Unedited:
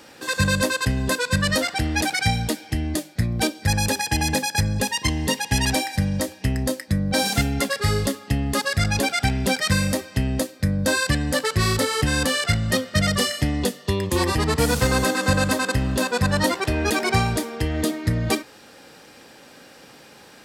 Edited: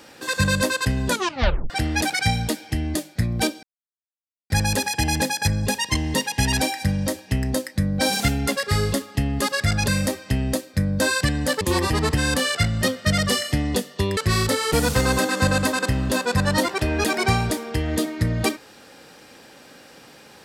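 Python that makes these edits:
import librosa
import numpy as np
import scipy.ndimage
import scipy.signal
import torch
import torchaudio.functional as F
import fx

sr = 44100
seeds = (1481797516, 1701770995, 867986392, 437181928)

y = fx.edit(x, sr, fx.tape_stop(start_s=1.08, length_s=0.62),
    fx.insert_silence(at_s=3.63, length_s=0.87),
    fx.cut(start_s=9.01, length_s=0.73),
    fx.swap(start_s=11.47, length_s=0.56, other_s=14.06, other_length_s=0.53), tone=tone)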